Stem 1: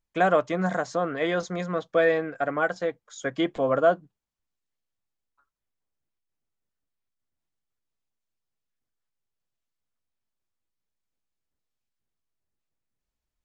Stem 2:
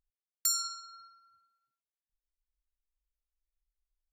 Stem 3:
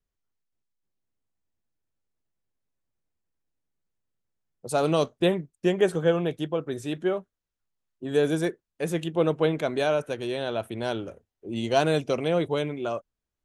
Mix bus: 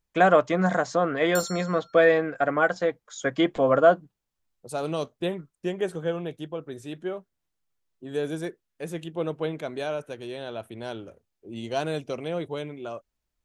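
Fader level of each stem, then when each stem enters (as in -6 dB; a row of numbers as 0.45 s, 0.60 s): +3.0 dB, -5.0 dB, -6.0 dB; 0.00 s, 0.90 s, 0.00 s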